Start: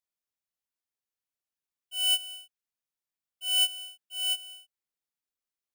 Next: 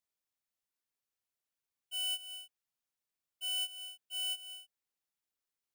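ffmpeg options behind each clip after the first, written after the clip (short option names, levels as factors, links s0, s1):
-af "acompressor=threshold=0.0126:ratio=4"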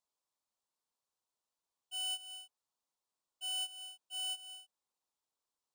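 -af "equalizer=f=250:t=o:w=1:g=3,equalizer=f=500:t=o:w=1:g=5,equalizer=f=1000:t=o:w=1:g=12,equalizer=f=2000:t=o:w=1:g=-7,equalizer=f=4000:t=o:w=1:g=5,equalizer=f=8000:t=o:w=1:g=7,equalizer=f=16000:t=o:w=1:g=-7,volume=0.631"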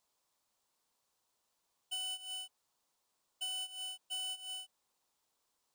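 -af "acompressor=threshold=0.00355:ratio=6,volume=3.16"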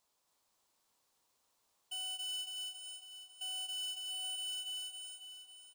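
-af "aecho=1:1:274|548|822|1096|1370|1644|1918|2192|2466:0.708|0.418|0.246|0.145|0.0858|0.0506|0.0299|0.0176|0.0104,alimiter=level_in=4.22:limit=0.0631:level=0:latency=1:release=21,volume=0.237,volume=1.12"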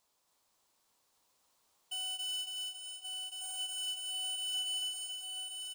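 -af "aecho=1:1:1128:0.596,volume=1.33"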